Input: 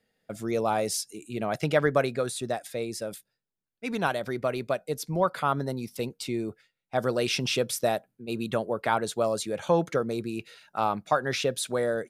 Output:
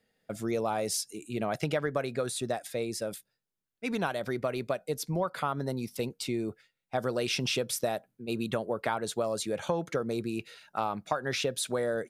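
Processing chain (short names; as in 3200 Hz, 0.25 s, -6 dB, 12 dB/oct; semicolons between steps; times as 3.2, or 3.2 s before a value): compressor, threshold -26 dBFS, peak gain reduction 9 dB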